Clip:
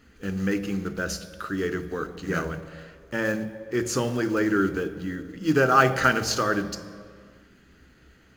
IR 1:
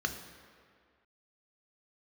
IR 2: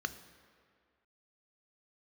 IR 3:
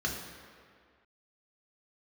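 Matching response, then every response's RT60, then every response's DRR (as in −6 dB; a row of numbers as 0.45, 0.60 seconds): 2; 2.0, 2.0, 2.0 seconds; 5.0, 10.5, −1.0 decibels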